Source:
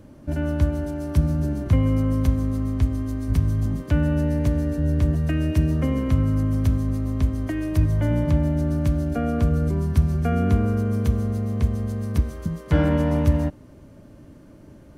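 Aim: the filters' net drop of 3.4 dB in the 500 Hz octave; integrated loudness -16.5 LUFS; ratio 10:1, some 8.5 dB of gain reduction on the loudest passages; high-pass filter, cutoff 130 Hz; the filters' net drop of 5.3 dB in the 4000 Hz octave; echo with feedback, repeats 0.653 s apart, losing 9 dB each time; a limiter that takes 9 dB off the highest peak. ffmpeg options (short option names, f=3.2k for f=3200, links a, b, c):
-af "highpass=130,equalizer=f=500:t=o:g=-4,equalizer=f=4k:t=o:g=-8,acompressor=threshold=-28dB:ratio=10,alimiter=level_in=4dB:limit=-24dB:level=0:latency=1,volume=-4dB,aecho=1:1:653|1306|1959|2612:0.355|0.124|0.0435|0.0152,volume=19dB"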